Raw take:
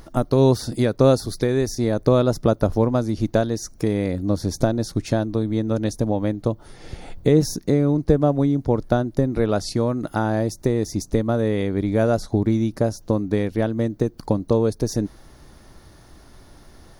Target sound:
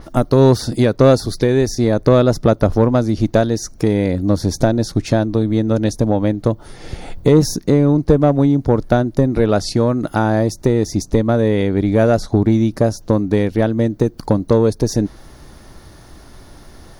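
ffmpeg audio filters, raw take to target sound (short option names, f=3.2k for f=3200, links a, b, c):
-af "acontrast=67,adynamicequalizer=threshold=0.00794:dfrequency=7300:dqfactor=0.7:tfrequency=7300:tqfactor=0.7:attack=5:release=100:ratio=0.375:range=3:mode=cutabove:tftype=highshelf"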